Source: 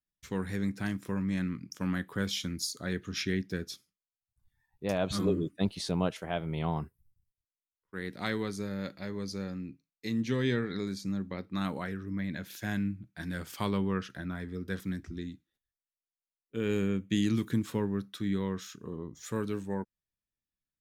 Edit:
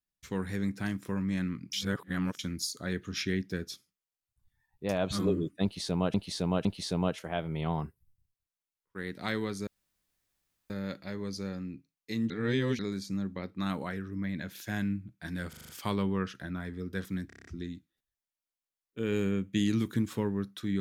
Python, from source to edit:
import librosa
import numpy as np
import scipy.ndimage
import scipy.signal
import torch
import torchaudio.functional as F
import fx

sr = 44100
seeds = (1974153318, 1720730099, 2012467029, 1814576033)

y = fx.edit(x, sr, fx.reverse_span(start_s=1.73, length_s=0.66),
    fx.repeat(start_s=5.63, length_s=0.51, count=3),
    fx.insert_room_tone(at_s=8.65, length_s=1.03),
    fx.reverse_span(start_s=10.25, length_s=0.49),
    fx.stutter(start_s=13.44, slice_s=0.04, count=6),
    fx.stutter(start_s=15.02, slice_s=0.03, count=7), tone=tone)